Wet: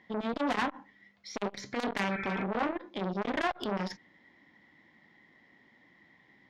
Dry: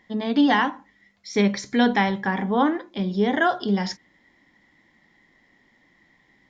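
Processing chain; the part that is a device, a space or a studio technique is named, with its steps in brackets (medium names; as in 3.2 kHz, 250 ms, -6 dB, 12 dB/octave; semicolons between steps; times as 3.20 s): valve radio (band-pass 84–4200 Hz; valve stage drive 21 dB, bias 0.4; transformer saturation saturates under 870 Hz); spectral replace 2.13–2.41 s, 1.3–2.6 kHz before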